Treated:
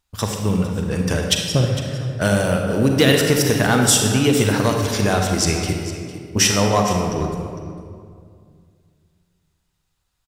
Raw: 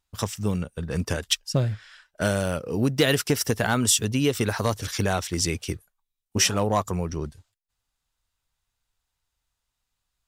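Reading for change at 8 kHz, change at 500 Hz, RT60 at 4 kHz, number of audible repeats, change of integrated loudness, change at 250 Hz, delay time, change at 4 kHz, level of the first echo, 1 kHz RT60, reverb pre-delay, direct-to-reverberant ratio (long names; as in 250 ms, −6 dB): +6.0 dB, +7.5 dB, 1.4 s, 1, +6.5 dB, +8.0 dB, 455 ms, +6.0 dB, −14.5 dB, 2.0 s, 34 ms, 1.5 dB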